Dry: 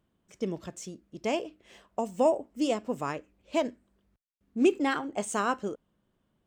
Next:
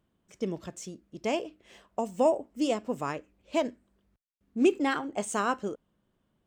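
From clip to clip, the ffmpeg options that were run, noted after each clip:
ffmpeg -i in.wav -af anull out.wav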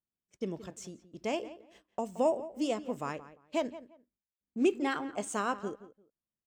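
ffmpeg -i in.wav -filter_complex "[0:a]agate=range=-22dB:threshold=-53dB:ratio=16:detection=peak,asplit=2[link_01][link_02];[link_02]adelay=173,lowpass=frequency=2400:poles=1,volume=-15dB,asplit=2[link_03][link_04];[link_04]adelay=173,lowpass=frequency=2400:poles=1,volume=0.22[link_05];[link_01][link_03][link_05]amix=inputs=3:normalize=0,volume=-4dB" out.wav

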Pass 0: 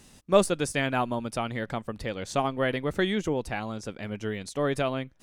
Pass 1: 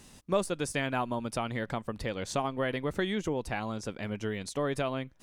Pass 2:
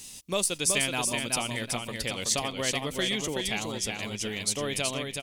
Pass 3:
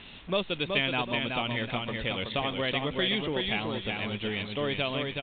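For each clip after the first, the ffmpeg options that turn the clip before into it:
ffmpeg -i in.wav -af "equalizer=frequency=1000:width_type=o:width=0.23:gain=3,acompressor=threshold=-30dB:ratio=2" out.wav
ffmpeg -i in.wav -filter_complex "[0:a]asplit=2[link_01][link_02];[link_02]aecho=0:1:375|750|1125|1500:0.596|0.191|0.061|0.0195[link_03];[link_01][link_03]amix=inputs=2:normalize=0,aexciter=amount=5.6:drive=3:freq=2200,volume=-2.5dB" out.wav
ffmpeg -i in.wav -af "aeval=exprs='val(0)+0.5*0.0133*sgn(val(0))':channel_layout=same,aresample=8000,aresample=44100" out.wav

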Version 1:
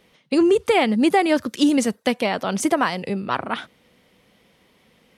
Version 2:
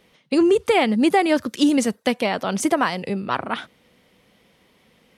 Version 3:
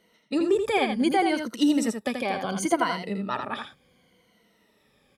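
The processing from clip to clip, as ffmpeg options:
ffmpeg -i in.wav -af anull out.wav
ffmpeg -i in.wav -af "afftfilt=real='re*pow(10,13/40*sin(2*PI*(1.9*log(max(b,1)*sr/1024/100)/log(2)-(-0.69)*(pts-256)/sr)))':imag='im*pow(10,13/40*sin(2*PI*(1.9*log(max(b,1)*sr/1024/100)/log(2)-(-0.69)*(pts-256)/sr)))':win_size=1024:overlap=0.75,bandreject=frequency=2700:width=17,aecho=1:1:82:0.501,volume=-8dB" out.wav

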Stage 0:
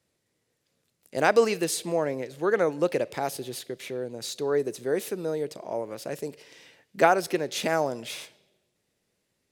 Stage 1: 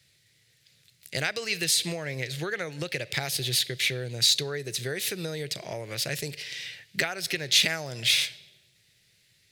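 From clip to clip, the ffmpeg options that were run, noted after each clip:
ffmpeg -i in.wav -af "highshelf=frequency=8100:gain=4.5,acompressor=threshold=-30dB:ratio=10,equalizer=frequency=125:width_type=o:width=1:gain=9,equalizer=frequency=250:width_type=o:width=1:gain=-12,equalizer=frequency=500:width_type=o:width=1:gain=-5,equalizer=frequency=1000:width_type=o:width=1:gain=-12,equalizer=frequency=2000:width_type=o:width=1:gain=8,equalizer=frequency=4000:width_type=o:width=1:gain=9,volume=7.5dB" out.wav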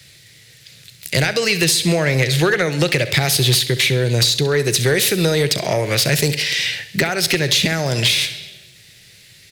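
ffmpeg -i in.wav -filter_complex "[0:a]acrossover=split=400[link_01][link_02];[link_02]acompressor=threshold=-31dB:ratio=10[link_03];[link_01][link_03]amix=inputs=2:normalize=0,aeval=exprs='0.2*(cos(1*acos(clip(val(0)/0.2,-1,1)))-cos(1*PI/2))+0.0794*(cos(5*acos(clip(val(0)/0.2,-1,1)))-cos(5*PI/2))':channel_layout=same,aecho=1:1:67|134|201|268:0.188|0.0904|0.0434|0.0208,volume=8.5dB" out.wav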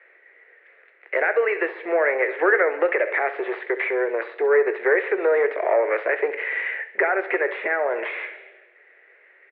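ffmpeg -i in.wav -filter_complex "[0:a]asplit=2[link_01][link_02];[link_02]asoftclip=type=tanh:threshold=-21dB,volume=-3dB[link_03];[link_01][link_03]amix=inputs=2:normalize=0,asuperpass=centerf=890:order=12:qfactor=0.53,asplit=2[link_04][link_05];[link_05]adelay=21,volume=-13dB[link_06];[link_04][link_06]amix=inputs=2:normalize=0,volume=-2dB" out.wav

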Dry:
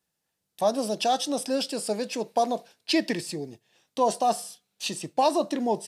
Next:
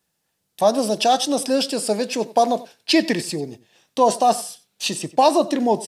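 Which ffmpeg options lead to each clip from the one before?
ffmpeg -i in.wav -filter_complex "[0:a]asplit=2[link_01][link_02];[link_02]adelay=93.29,volume=-18dB,highshelf=frequency=4000:gain=-2.1[link_03];[link_01][link_03]amix=inputs=2:normalize=0,volume=7dB" out.wav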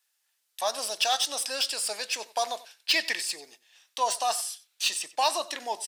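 ffmpeg -i in.wav -filter_complex "[0:a]highpass=1400,acrossover=split=3300[link_01][link_02];[link_02]asoftclip=type=tanh:threshold=-23dB[link_03];[link_01][link_03]amix=inputs=2:normalize=0" out.wav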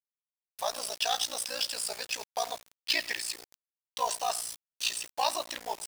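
ffmpeg -i in.wav -af "aeval=exprs='val(0)*sin(2*PI*29*n/s)':channel_layout=same,acrusher=bits=6:mix=0:aa=0.000001,volume=-1dB" out.wav

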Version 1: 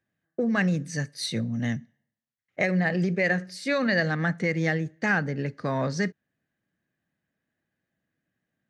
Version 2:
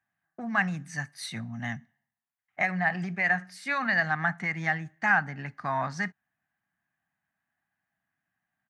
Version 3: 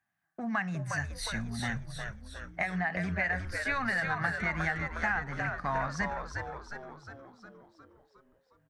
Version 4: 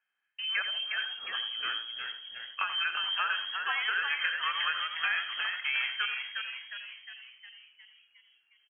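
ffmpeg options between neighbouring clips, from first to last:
ffmpeg -i in.wav -af "firequalizer=gain_entry='entry(200,0);entry(500,-14);entry(730,13);entry(4300,-1);entry(10000,5)':delay=0.05:min_phase=1,volume=-7.5dB" out.wav
ffmpeg -i in.wav -filter_complex "[0:a]acompressor=threshold=-28dB:ratio=6,asplit=2[link_01][link_02];[link_02]asplit=8[link_03][link_04][link_05][link_06][link_07][link_08][link_09][link_10];[link_03]adelay=359,afreqshift=-97,volume=-5dB[link_11];[link_04]adelay=718,afreqshift=-194,volume=-9.9dB[link_12];[link_05]adelay=1077,afreqshift=-291,volume=-14.8dB[link_13];[link_06]adelay=1436,afreqshift=-388,volume=-19.6dB[link_14];[link_07]adelay=1795,afreqshift=-485,volume=-24.5dB[link_15];[link_08]adelay=2154,afreqshift=-582,volume=-29.4dB[link_16];[link_09]adelay=2513,afreqshift=-679,volume=-34.3dB[link_17];[link_10]adelay=2872,afreqshift=-776,volume=-39.2dB[link_18];[link_11][link_12][link_13][link_14][link_15][link_16][link_17][link_18]amix=inputs=8:normalize=0[link_19];[link_01][link_19]amix=inputs=2:normalize=0" out.wav
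ffmpeg -i in.wav -filter_complex "[0:a]lowpass=frequency=2800:width_type=q:width=0.5098,lowpass=frequency=2800:width_type=q:width=0.6013,lowpass=frequency=2800:width_type=q:width=0.9,lowpass=frequency=2800:width_type=q:width=2.563,afreqshift=-3300,asplit=2[link_01][link_02];[link_02]adelay=85,lowpass=frequency=1600:poles=1,volume=-7dB,asplit=2[link_03][link_04];[link_04]adelay=85,lowpass=frequency=1600:poles=1,volume=0.36,asplit=2[link_05][link_06];[link_06]adelay=85,lowpass=frequency=1600:poles=1,volume=0.36,asplit=2[link_07][link_08];[link_08]adelay=85,lowpass=frequency=1600:poles=1,volume=0.36[link_09];[link_01][link_03][link_05][link_07][link_09]amix=inputs=5:normalize=0" out.wav

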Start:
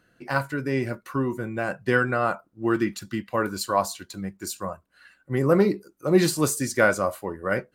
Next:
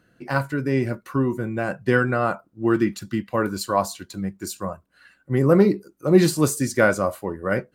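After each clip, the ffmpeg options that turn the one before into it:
ffmpeg -i in.wav -af "equalizer=frequency=150:width=0.34:gain=5" out.wav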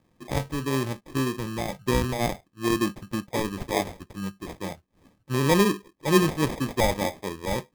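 ffmpeg -i in.wav -af "acrusher=samples=31:mix=1:aa=0.000001,volume=-4.5dB" out.wav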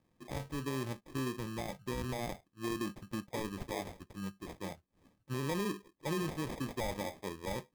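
ffmpeg -i in.wav -af "alimiter=limit=-20dB:level=0:latency=1:release=67,volume=-8.5dB" out.wav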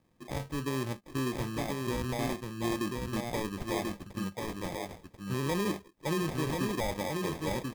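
ffmpeg -i in.wav -af "aecho=1:1:1038:0.668,volume=4dB" out.wav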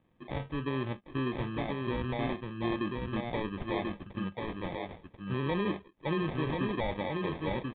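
ffmpeg -i in.wav -af "aresample=8000,aresample=44100" out.wav

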